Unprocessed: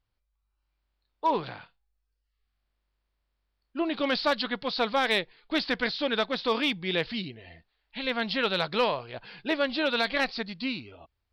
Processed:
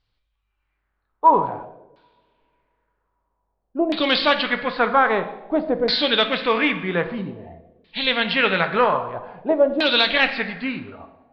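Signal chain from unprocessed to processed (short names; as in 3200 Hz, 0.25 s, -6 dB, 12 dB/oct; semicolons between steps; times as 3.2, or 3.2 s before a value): two-slope reverb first 0.99 s, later 3.1 s, from -24 dB, DRR 7 dB; LFO low-pass saw down 0.51 Hz 530–4600 Hz; gain +5.5 dB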